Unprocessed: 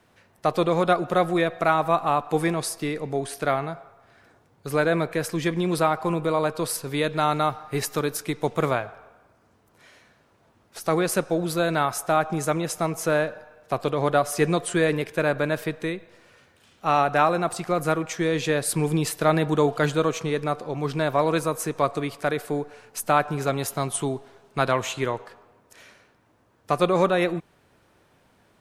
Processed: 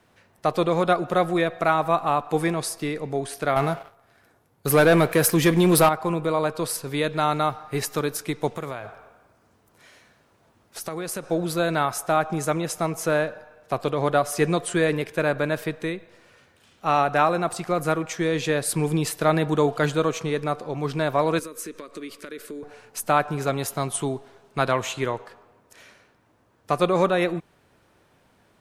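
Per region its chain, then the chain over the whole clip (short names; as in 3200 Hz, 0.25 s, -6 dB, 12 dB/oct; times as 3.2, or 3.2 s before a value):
3.56–5.89 bell 12000 Hz +12 dB 0.63 oct + sample leveller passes 2
8.56–11.24 high shelf 5800 Hz +4.5 dB + compressor, threshold -27 dBFS
21.39–22.63 compressor, threshold -29 dBFS + fixed phaser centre 320 Hz, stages 4
whole clip: dry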